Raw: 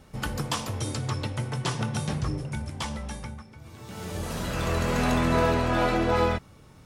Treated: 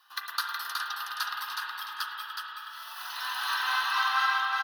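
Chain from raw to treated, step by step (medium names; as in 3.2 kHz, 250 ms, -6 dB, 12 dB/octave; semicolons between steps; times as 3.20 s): gliding tape speed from 134% -> 162%; high-pass 980 Hz 24 dB/octave; transient shaper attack +3 dB, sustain -7 dB; static phaser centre 2.2 kHz, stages 6; on a send: delay 369 ms -4 dB; on the sum: spring tank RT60 3.8 s, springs 33/53 ms, chirp 60 ms, DRR -0.5 dB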